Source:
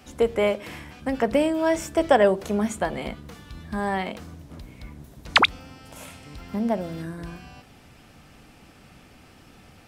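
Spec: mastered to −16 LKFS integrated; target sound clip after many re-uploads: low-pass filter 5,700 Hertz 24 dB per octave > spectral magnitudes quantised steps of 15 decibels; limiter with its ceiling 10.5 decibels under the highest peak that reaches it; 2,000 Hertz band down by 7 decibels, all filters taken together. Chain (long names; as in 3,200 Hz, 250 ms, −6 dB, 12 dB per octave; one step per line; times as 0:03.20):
parametric band 2,000 Hz −9 dB
brickwall limiter −16.5 dBFS
low-pass filter 5,700 Hz 24 dB per octave
spectral magnitudes quantised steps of 15 dB
level +13 dB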